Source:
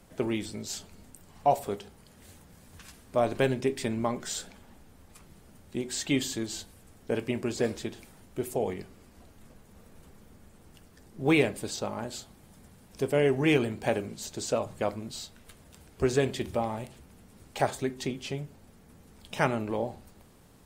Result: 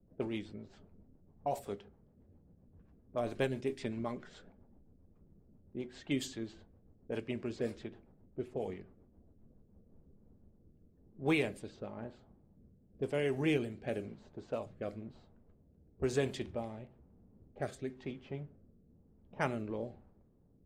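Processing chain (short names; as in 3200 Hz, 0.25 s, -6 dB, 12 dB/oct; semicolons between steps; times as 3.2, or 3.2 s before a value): low-pass opened by the level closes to 400 Hz, open at -23.5 dBFS; rotary speaker horn 7.5 Hz, later 1 Hz, at 9.42; gain -6.5 dB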